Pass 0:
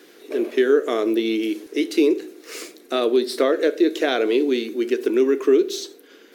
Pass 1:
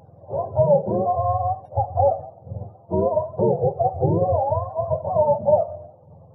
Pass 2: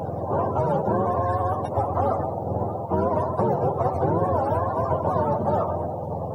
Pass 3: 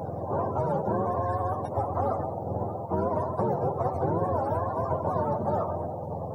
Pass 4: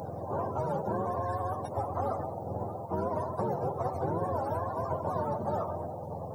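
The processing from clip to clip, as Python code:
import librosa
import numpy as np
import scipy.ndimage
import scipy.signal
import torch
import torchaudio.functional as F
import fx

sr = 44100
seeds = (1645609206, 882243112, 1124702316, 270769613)

y1 = fx.octave_mirror(x, sr, pivot_hz=490.0)
y1 = F.gain(torch.from_numpy(y1), 1.5).numpy()
y2 = fx.spectral_comp(y1, sr, ratio=4.0)
y2 = F.gain(torch.from_numpy(y2), -3.5).numpy()
y3 = fx.peak_eq(y2, sr, hz=2900.0, db=-7.5, octaves=0.6)
y3 = F.gain(torch.from_numpy(y3), -4.5).numpy()
y4 = fx.high_shelf(y3, sr, hz=2500.0, db=9.0)
y4 = F.gain(torch.from_numpy(y4), -5.0).numpy()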